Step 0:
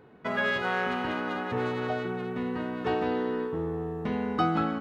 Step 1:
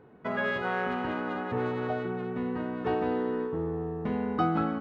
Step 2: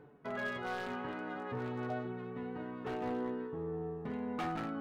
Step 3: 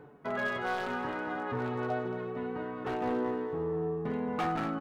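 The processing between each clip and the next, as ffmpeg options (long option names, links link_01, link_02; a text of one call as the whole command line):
ffmpeg -i in.wav -af "highshelf=frequency=2800:gain=-12" out.wav
ffmpeg -i in.wav -af "areverse,acompressor=mode=upward:threshold=-31dB:ratio=2.5,areverse,aeval=exprs='0.0794*(abs(mod(val(0)/0.0794+3,4)-2)-1)':channel_layout=same,flanger=delay=6.6:depth=1.7:regen=44:speed=0.79:shape=triangular,volume=-4.5dB" out.wav
ffmpeg -i in.wav -filter_complex "[0:a]acrossover=split=1300[link_01][link_02];[link_01]crystalizer=i=8.5:c=0[link_03];[link_03][link_02]amix=inputs=2:normalize=0,aecho=1:1:225|450|675|900:0.282|0.113|0.0451|0.018,volume=4dB" out.wav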